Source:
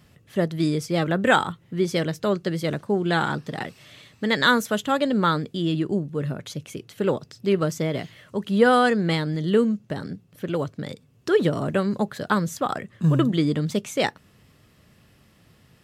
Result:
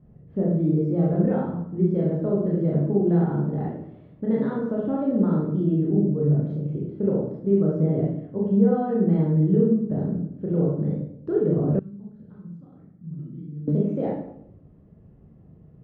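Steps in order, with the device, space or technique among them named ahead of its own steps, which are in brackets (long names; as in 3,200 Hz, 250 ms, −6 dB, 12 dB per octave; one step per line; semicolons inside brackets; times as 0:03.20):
television next door (downward compressor 5 to 1, threshold −22 dBFS, peak gain reduction 10 dB; low-pass filter 450 Hz 12 dB per octave; convolution reverb RT60 0.75 s, pre-delay 24 ms, DRR −4.5 dB)
0:11.79–0:13.68: guitar amp tone stack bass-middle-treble 6-0-2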